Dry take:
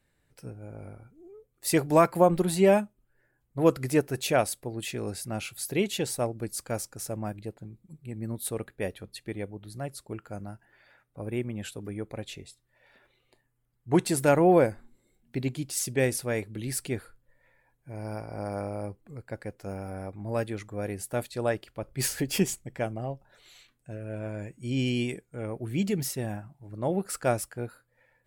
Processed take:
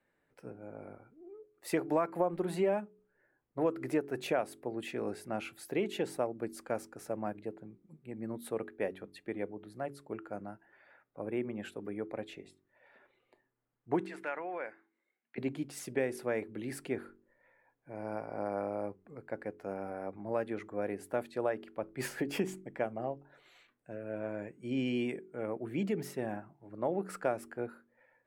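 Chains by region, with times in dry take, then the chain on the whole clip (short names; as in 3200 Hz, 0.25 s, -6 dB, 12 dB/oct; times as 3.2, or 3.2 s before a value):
14.06–15.38 compressor 4:1, threshold -21 dBFS + band-pass 2100 Hz, Q 1.3
whole clip: three-band isolator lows -17 dB, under 200 Hz, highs -16 dB, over 2400 Hz; de-hum 47.01 Hz, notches 9; compressor 4:1, threshold -28 dBFS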